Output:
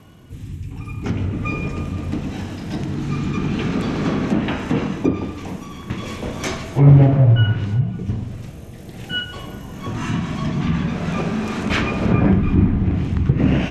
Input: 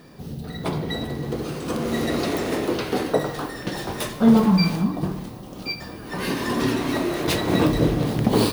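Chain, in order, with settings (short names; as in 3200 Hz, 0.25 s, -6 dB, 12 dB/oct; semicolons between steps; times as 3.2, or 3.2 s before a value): rotary speaker horn 0.65 Hz; wide varispeed 0.622×; treble ducked by the level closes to 2100 Hz, closed at -16.5 dBFS; gain +4.5 dB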